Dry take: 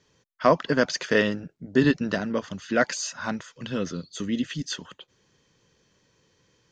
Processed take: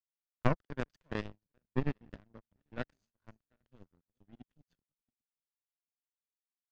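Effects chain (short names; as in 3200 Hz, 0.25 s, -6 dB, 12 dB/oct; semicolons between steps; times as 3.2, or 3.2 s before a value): regenerating reverse delay 0.396 s, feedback 58%, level -13 dB; power-law curve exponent 3; RIAA curve playback; gain -5.5 dB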